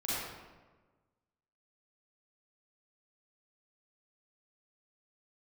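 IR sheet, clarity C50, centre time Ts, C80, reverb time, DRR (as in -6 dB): -5.5 dB, 115 ms, -1.5 dB, 1.3 s, -10.0 dB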